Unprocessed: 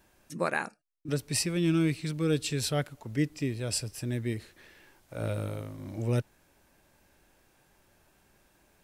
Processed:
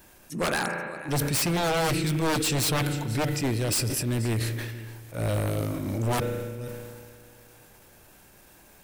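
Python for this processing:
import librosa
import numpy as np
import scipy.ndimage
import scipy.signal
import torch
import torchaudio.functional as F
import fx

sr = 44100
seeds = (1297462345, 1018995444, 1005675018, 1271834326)

p1 = fx.level_steps(x, sr, step_db=14)
p2 = x + F.gain(torch.from_numpy(p1), 3.0).numpy()
p3 = fx.transient(p2, sr, attack_db=-8, sustain_db=-1)
p4 = fx.high_shelf(p3, sr, hz=9800.0, db=9.5)
p5 = p4 + 10.0 ** (-20.0 / 20.0) * np.pad(p4, (int(481 * sr / 1000.0), 0))[:len(p4)]
p6 = fx.rev_spring(p5, sr, rt60_s=3.2, pass_ms=(35,), chirp_ms=75, drr_db=12.5)
p7 = 10.0 ** (-24.5 / 20.0) * (np.abs((p6 / 10.0 ** (-24.5 / 20.0) + 3.0) % 4.0 - 2.0) - 1.0)
p8 = fx.sustainer(p7, sr, db_per_s=30.0)
y = F.gain(torch.from_numpy(p8), 4.5).numpy()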